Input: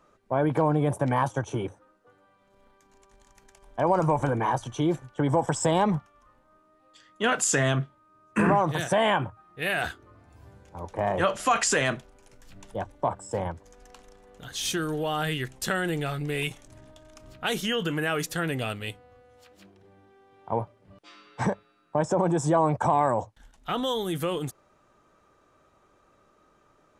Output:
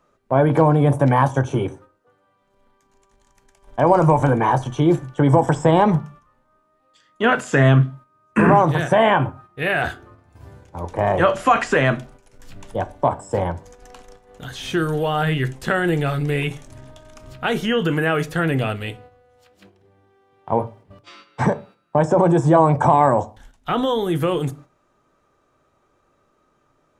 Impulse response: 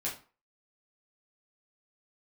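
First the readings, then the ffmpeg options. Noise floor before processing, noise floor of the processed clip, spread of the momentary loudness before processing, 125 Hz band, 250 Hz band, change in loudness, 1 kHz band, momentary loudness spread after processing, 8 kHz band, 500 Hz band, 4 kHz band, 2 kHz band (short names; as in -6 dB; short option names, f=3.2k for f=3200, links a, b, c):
-63 dBFS, -64 dBFS, 14 LU, +10.5 dB, +8.5 dB, +8.0 dB, +8.0 dB, 13 LU, -8.0 dB, +8.0 dB, +1.5 dB, +6.5 dB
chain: -filter_complex "[0:a]acrossover=split=2700[a][b];[b]acompressor=threshold=-47dB:ratio=4:attack=1:release=60[c];[a][c]amix=inputs=2:normalize=0,agate=range=-9dB:threshold=-52dB:ratio=16:detection=peak,asplit=2[d][e];[1:a]atrim=start_sample=2205,lowshelf=f=500:g=8.5[f];[e][f]afir=irnorm=-1:irlink=0,volume=-15.5dB[g];[d][g]amix=inputs=2:normalize=0,volume=6.5dB"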